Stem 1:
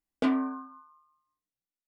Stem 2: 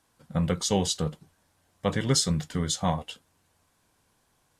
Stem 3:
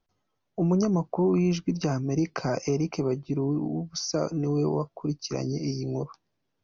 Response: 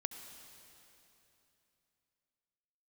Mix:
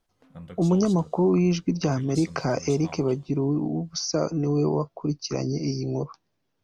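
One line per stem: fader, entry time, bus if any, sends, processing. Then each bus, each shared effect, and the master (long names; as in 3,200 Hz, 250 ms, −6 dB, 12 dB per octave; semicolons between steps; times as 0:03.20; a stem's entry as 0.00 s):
−17.0 dB, 0.00 s, no send, phase distortion by the signal itself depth 0.28 ms; downward compressor 3 to 1, threshold −36 dBFS, peak gain reduction 10.5 dB; automatic ducking −21 dB, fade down 0.75 s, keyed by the third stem
−19.0 dB, 0.00 s, send −6.5 dB, no processing
+2.5 dB, 0.00 s, no send, no processing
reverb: on, RT60 3.1 s, pre-delay 63 ms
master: no processing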